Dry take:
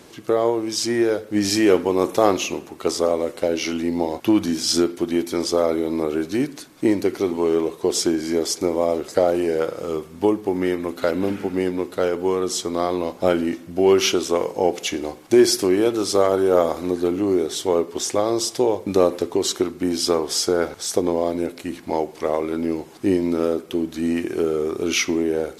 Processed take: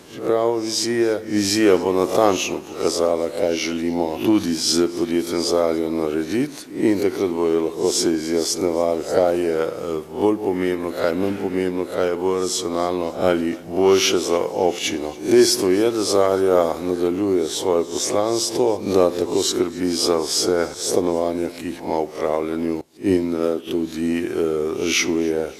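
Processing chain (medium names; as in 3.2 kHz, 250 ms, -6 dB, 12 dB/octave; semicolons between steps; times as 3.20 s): reverse spectral sustain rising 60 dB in 0.38 s; thinning echo 281 ms, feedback 49%, level -22.5 dB; 22.81–23.67 s: three bands expanded up and down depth 100%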